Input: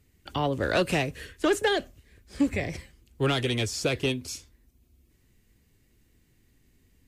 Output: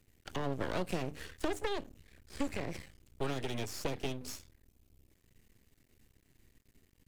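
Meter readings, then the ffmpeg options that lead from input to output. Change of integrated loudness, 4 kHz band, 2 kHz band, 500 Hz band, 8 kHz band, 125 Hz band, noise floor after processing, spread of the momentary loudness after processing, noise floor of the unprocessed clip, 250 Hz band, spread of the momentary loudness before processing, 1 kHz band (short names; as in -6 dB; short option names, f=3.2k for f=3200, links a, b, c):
-11.5 dB, -13.0 dB, -13.0 dB, -11.0 dB, -10.0 dB, -10.5 dB, -72 dBFS, 12 LU, -65 dBFS, -10.5 dB, 11 LU, -9.5 dB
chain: -filter_complex "[0:a]bandreject=f=50:t=h:w=6,bandreject=f=100:t=h:w=6,bandreject=f=150:t=h:w=6,bandreject=f=200:t=h:w=6,bandreject=f=250:t=h:w=6,bandreject=f=300:t=h:w=6,acrossover=split=170|570[a][b][c];[a]acompressor=threshold=-44dB:ratio=4[d];[b]acompressor=threshold=-33dB:ratio=4[e];[c]acompressor=threshold=-39dB:ratio=4[f];[d][e][f]amix=inputs=3:normalize=0,aeval=exprs='max(val(0),0)':c=same,volume=1dB"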